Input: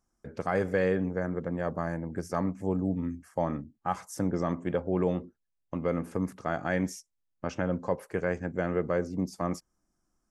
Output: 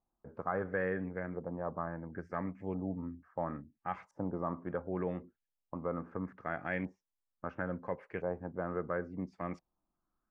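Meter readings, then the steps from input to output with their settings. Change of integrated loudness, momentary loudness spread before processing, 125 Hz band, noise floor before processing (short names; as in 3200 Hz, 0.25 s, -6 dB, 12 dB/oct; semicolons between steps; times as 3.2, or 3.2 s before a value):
-7.5 dB, 7 LU, -9.0 dB, -79 dBFS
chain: LFO low-pass saw up 0.73 Hz 800–2600 Hz; gain -9 dB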